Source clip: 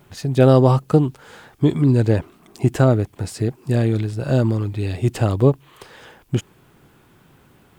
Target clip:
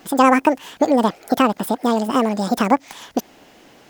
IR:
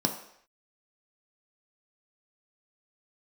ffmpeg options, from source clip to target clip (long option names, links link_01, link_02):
-filter_complex "[0:a]lowshelf=frequency=120:gain=-6,asplit=2[link_01][link_02];[link_02]acompressor=threshold=-24dB:ratio=6,volume=1.5dB[link_03];[link_01][link_03]amix=inputs=2:normalize=0,asetrate=88200,aresample=44100,volume=-1dB"